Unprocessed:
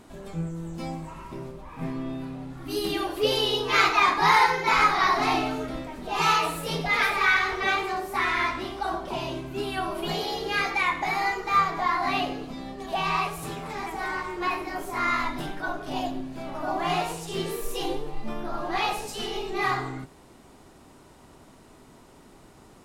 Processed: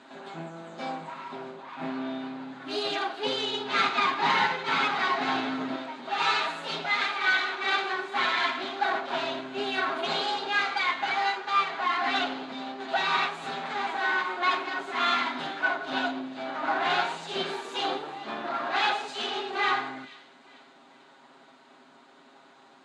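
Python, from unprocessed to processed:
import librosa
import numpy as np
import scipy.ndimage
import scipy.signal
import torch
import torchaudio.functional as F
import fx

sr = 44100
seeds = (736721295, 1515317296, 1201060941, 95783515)

y = fx.lower_of_two(x, sr, delay_ms=7.4)
y = fx.low_shelf(y, sr, hz=290.0, db=12.0, at=(3.26, 5.76))
y = fx.rider(y, sr, range_db=4, speed_s=0.5)
y = fx.cabinet(y, sr, low_hz=230.0, low_slope=24, high_hz=6100.0, hz=(300.0, 460.0, 800.0, 1500.0, 3800.0, 5500.0), db=(-4, -8, 3, 5, 5, -10))
y = fx.echo_wet_highpass(y, sr, ms=440, feedback_pct=42, hz=2300.0, wet_db=-17.5)
y = F.gain(torch.from_numpy(y), -1.0).numpy()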